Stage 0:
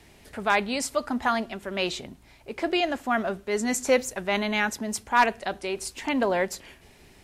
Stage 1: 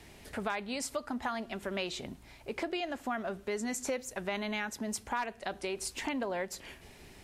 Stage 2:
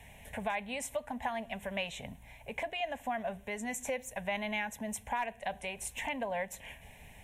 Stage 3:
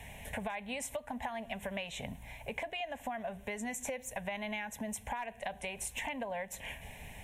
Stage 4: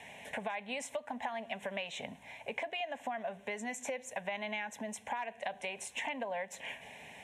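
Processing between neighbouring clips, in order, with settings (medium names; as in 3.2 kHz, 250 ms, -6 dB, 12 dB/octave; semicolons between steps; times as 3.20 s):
compression 5:1, threshold -33 dBFS, peak gain reduction 16 dB
static phaser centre 1.3 kHz, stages 6; trim +2.5 dB
compression, threshold -41 dBFS, peak gain reduction 11 dB; trim +5 dB
band-pass 250–6900 Hz; trim +1 dB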